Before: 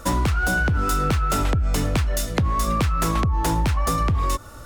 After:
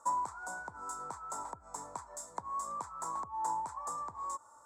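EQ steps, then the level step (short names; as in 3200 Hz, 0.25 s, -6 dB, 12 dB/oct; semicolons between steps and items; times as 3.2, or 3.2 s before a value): double band-pass 2700 Hz, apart 3 oct; high shelf 5200 Hz -6 dB; -2.5 dB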